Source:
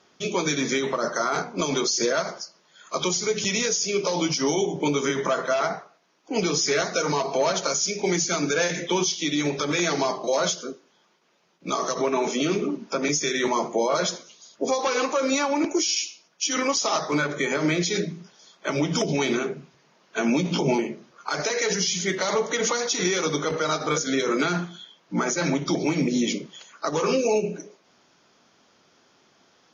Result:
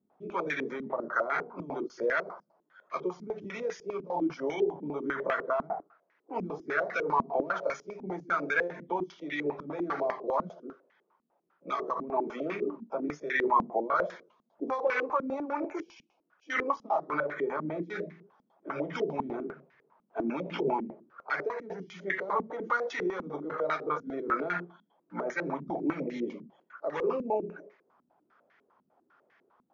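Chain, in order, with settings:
low-shelf EQ 470 Hz −11 dB
low-pass on a step sequencer 10 Hz 230–1,900 Hz
level −6.5 dB

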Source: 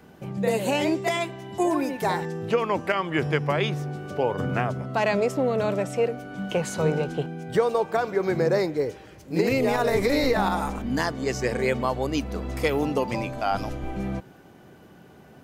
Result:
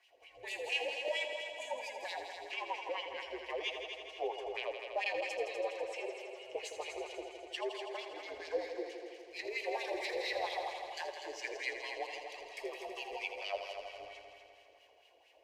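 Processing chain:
phase distortion by the signal itself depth 0.058 ms
high-pass filter 62 Hz 6 dB per octave
guitar amp tone stack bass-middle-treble 10-0-10
notch filter 3,700 Hz, Q 16
in parallel at −1 dB: brickwall limiter −26 dBFS, peak gain reduction 11.5 dB
on the sum: phaser with its sweep stopped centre 600 Hz, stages 4
frequency shifter −84 Hz
LFO wah 4.4 Hz 440–2,900 Hz, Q 2.8
on a send: echo machine with several playback heads 82 ms, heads all three, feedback 60%, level −11 dB
on the sum: level +3 dB

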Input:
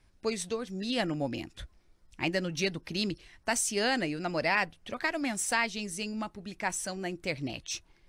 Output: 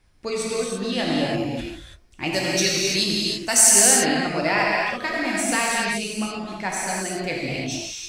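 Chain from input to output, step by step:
0:02.28–0:03.72: bass and treble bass −2 dB, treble +13 dB
reverb whose tail is shaped and stops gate 360 ms flat, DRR −4.5 dB
level +2.5 dB

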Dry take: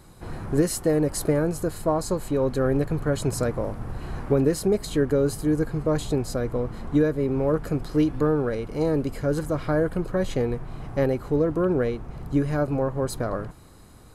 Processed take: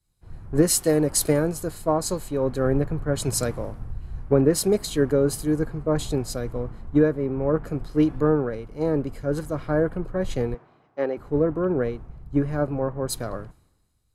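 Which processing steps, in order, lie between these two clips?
0:10.54–0:11.17: band-pass filter 320–4,800 Hz
multiband upward and downward expander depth 100%

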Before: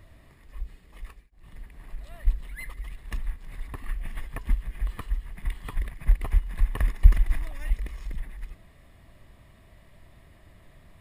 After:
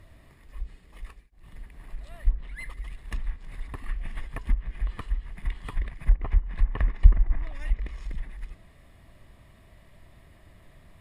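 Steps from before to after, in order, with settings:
treble cut that deepens with the level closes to 1,200 Hz, closed at −16 dBFS

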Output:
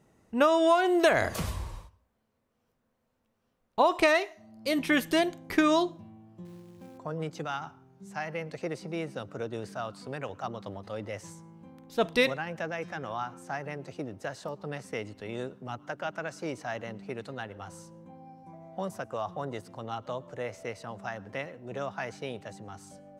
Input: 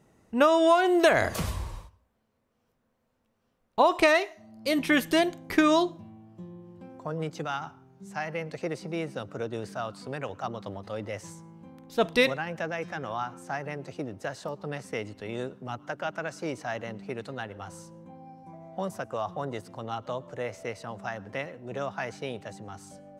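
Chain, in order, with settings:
0:06.45–0:06.98: floating-point word with a short mantissa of 2 bits
level −2 dB

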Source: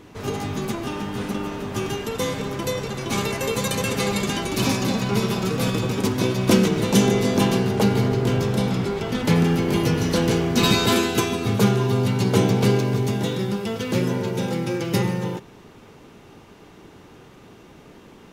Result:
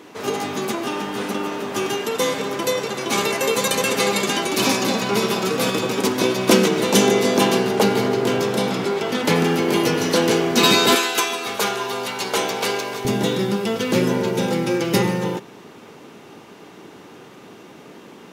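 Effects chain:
high-pass filter 290 Hz 12 dB per octave, from 0:10.95 680 Hz, from 0:13.05 190 Hz
level +5.5 dB

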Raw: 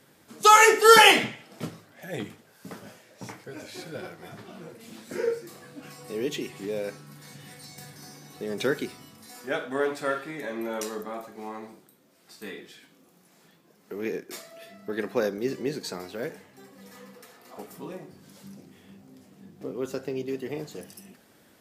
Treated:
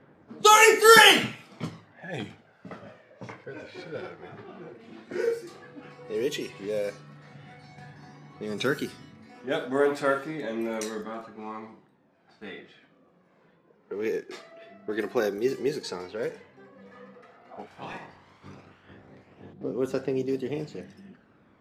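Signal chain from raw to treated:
0:17.66–0:19.52: ceiling on every frequency bin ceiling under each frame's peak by 21 dB
low-pass that shuts in the quiet parts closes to 1,600 Hz, open at −25.5 dBFS
phase shifter 0.1 Hz, delay 2.8 ms, feedback 38%

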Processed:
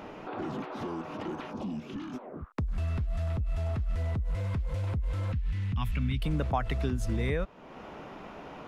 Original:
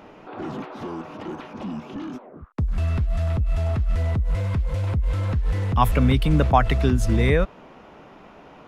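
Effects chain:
0:05.32–0:06.22: drawn EQ curve 220 Hz 0 dB, 510 Hz −19 dB, 2,600 Hz +2 dB, 9,200 Hz −8 dB
downward compressor 2 to 1, threshold −39 dBFS, peak gain reduction 15.5 dB
0:01.50–0:02.12: parametric band 2,600 Hz → 410 Hz −12.5 dB 0.98 octaves
level +2 dB

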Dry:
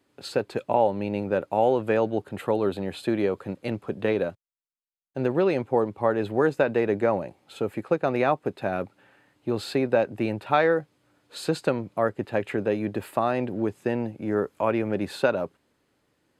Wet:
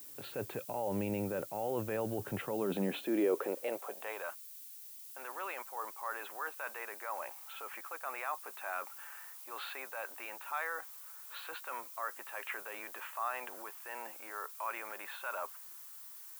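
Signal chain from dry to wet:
Butterworth low-pass 3,400 Hz
low-shelf EQ 240 Hz −8 dB
reversed playback
downward compressor, threshold −32 dBFS, peak gain reduction 15.5 dB
reversed playback
brickwall limiter −30 dBFS, peak gain reduction 9.5 dB
high-pass filter sweep 110 Hz → 1,100 Hz, 0:02.34–0:04.30
transient designer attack −3 dB, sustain +1 dB
background noise violet −54 dBFS
level +3.5 dB

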